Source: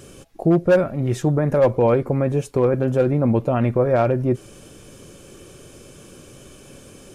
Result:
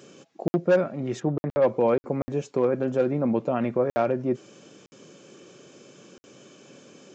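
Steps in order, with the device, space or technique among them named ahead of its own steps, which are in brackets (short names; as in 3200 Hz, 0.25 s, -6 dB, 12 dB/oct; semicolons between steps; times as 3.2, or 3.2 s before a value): call with lost packets (HPF 160 Hz 24 dB/oct; downsampling 16000 Hz; packet loss packets of 60 ms random); 1.19–1.66 LPF 1900 Hz -> 4300 Hz 12 dB/oct; gain -4.5 dB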